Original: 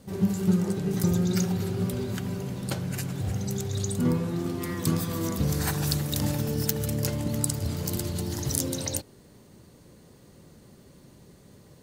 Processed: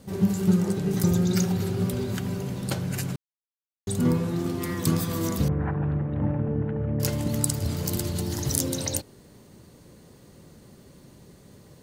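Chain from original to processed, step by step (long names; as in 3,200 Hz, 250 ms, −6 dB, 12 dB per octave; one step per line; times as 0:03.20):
0:03.16–0:03.87: silence
0:05.48–0:07.00: Gaussian smoothing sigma 5.3 samples
level +2 dB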